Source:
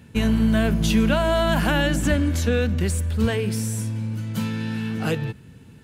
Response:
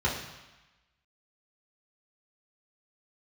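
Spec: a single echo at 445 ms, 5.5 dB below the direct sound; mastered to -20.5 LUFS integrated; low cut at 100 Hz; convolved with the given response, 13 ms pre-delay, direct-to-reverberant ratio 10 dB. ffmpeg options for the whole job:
-filter_complex "[0:a]highpass=100,aecho=1:1:445:0.531,asplit=2[s0][s1];[1:a]atrim=start_sample=2205,adelay=13[s2];[s1][s2]afir=irnorm=-1:irlink=0,volume=0.0891[s3];[s0][s3]amix=inputs=2:normalize=0,volume=1.19"

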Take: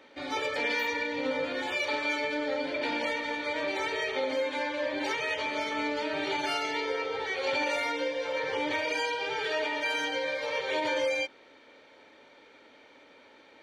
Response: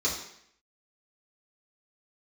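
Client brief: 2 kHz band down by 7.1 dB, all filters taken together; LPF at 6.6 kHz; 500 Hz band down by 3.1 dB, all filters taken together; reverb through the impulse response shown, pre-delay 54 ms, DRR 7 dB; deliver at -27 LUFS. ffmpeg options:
-filter_complex "[0:a]lowpass=6600,equalizer=f=500:t=o:g=-3,equalizer=f=2000:t=o:g=-8.5,asplit=2[s0][s1];[1:a]atrim=start_sample=2205,adelay=54[s2];[s1][s2]afir=irnorm=-1:irlink=0,volume=0.158[s3];[s0][s3]amix=inputs=2:normalize=0,volume=2.11"

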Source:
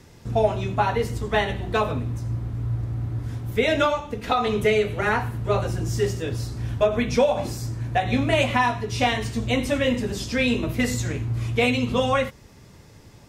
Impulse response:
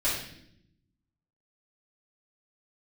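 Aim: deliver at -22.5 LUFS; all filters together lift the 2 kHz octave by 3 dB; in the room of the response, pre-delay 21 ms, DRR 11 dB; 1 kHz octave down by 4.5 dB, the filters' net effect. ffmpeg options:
-filter_complex "[0:a]equalizer=f=1000:t=o:g=-7.5,equalizer=f=2000:t=o:g=5.5,asplit=2[s0][s1];[1:a]atrim=start_sample=2205,adelay=21[s2];[s1][s2]afir=irnorm=-1:irlink=0,volume=0.0891[s3];[s0][s3]amix=inputs=2:normalize=0,volume=1.19"

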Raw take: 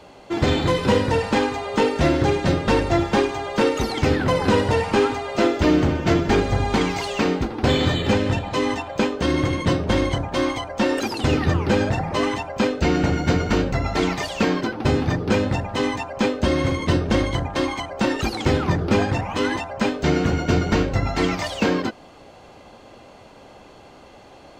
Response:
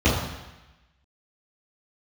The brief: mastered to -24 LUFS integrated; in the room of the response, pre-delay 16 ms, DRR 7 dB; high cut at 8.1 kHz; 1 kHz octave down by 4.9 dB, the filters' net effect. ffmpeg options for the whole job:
-filter_complex "[0:a]lowpass=8100,equalizer=f=1000:t=o:g=-6.5,asplit=2[s0][s1];[1:a]atrim=start_sample=2205,adelay=16[s2];[s1][s2]afir=irnorm=-1:irlink=0,volume=0.0501[s3];[s0][s3]amix=inputs=2:normalize=0,volume=0.531"

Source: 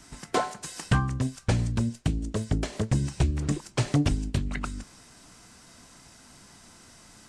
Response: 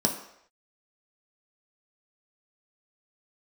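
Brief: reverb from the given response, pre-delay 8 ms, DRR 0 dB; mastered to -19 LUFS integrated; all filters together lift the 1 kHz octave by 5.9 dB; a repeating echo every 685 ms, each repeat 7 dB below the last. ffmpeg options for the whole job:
-filter_complex "[0:a]equalizer=f=1000:t=o:g=7.5,aecho=1:1:685|1370|2055|2740|3425:0.447|0.201|0.0905|0.0407|0.0183,asplit=2[s0][s1];[1:a]atrim=start_sample=2205,adelay=8[s2];[s1][s2]afir=irnorm=-1:irlink=0,volume=0.316[s3];[s0][s3]amix=inputs=2:normalize=0,volume=1.33"

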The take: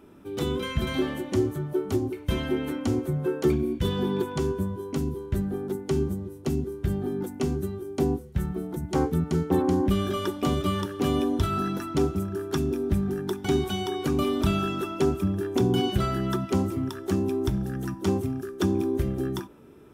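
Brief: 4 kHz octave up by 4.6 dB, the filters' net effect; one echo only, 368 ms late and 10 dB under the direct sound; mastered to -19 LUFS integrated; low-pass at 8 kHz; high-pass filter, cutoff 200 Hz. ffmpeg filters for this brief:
-af "highpass=200,lowpass=8000,equalizer=f=4000:t=o:g=6.5,aecho=1:1:368:0.316,volume=2.99"

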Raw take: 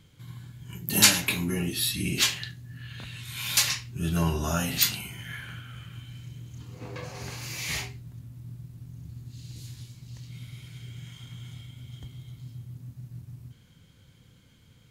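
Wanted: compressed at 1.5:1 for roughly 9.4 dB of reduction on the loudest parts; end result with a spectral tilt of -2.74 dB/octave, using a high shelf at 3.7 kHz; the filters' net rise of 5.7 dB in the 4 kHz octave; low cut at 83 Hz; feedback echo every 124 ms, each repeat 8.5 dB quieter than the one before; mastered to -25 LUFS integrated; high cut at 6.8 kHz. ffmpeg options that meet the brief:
-af "highpass=83,lowpass=6800,highshelf=f=3700:g=3,equalizer=f=4000:t=o:g=5.5,acompressor=threshold=0.0158:ratio=1.5,aecho=1:1:124|248|372|496:0.376|0.143|0.0543|0.0206,volume=2.37"

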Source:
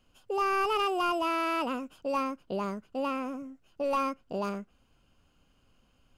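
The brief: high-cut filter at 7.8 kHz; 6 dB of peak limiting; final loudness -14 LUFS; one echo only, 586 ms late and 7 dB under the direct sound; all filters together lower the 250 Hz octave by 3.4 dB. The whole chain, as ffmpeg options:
-af "lowpass=7800,equalizer=f=250:t=o:g=-4.5,alimiter=level_in=1.41:limit=0.0631:level=0:latency=1,volume=0.708,aecho=1:1:586:0.447,volume=11.2"

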